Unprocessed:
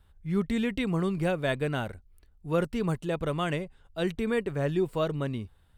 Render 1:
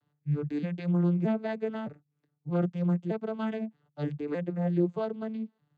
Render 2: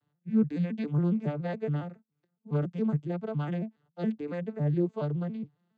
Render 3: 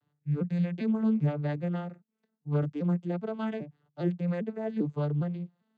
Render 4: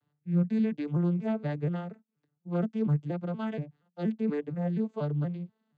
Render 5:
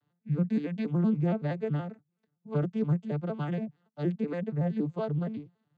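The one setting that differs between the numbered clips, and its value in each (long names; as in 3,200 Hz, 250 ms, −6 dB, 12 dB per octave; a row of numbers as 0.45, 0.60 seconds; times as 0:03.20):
vocoder with an arpeggio as carrier, a note every: 620, 139, 400, 238, 94 milliseconds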